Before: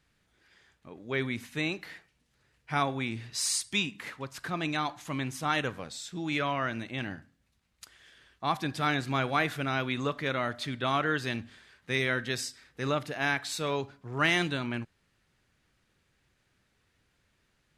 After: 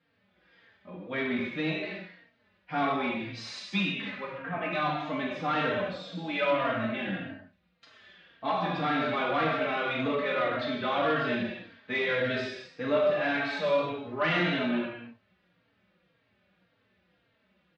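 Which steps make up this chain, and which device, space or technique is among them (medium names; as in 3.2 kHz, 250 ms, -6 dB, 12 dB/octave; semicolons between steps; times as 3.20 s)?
4.23–4.70 s: steep low-pass 2.7 kHz; gated-style reverb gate 350 ms falling, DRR -4.5 dB; barber-pole flanger into a guitar amplifier (endless flanger 3.8 ms -1.8 Hz; saturation -22.5 dBFS, distortion -15 dB; cabinet simulation 110–3800 Hz, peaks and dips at 130 Hz -6 dB, 190 Hz +7 dB, 600 Hz +9 dB)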